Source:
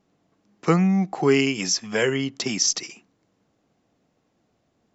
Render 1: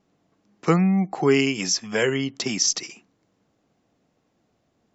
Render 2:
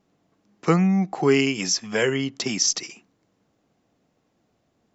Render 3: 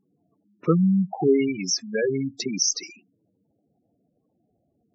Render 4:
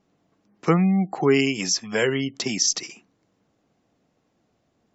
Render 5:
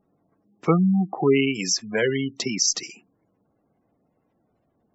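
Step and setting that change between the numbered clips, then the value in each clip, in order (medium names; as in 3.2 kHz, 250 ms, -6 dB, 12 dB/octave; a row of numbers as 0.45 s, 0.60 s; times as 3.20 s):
spectral gate, under each frame's peak: -45 dB, -60 dB, -10 dB, -35 dB, -20 dB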